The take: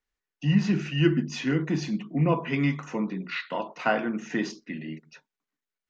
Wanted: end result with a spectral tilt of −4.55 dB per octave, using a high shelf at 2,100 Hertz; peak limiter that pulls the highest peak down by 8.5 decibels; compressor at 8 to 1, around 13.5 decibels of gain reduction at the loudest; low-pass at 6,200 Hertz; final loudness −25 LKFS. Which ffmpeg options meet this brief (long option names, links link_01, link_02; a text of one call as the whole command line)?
ffmpeg -i in.wav -af "lowpass=6200,highshelf=frequency=2100:gain=5.5,acompressor=threshold=-30dB:ratio=8,volume=12dB,alimiter=limit=-15.5dB:level=0:latency=1" out.wav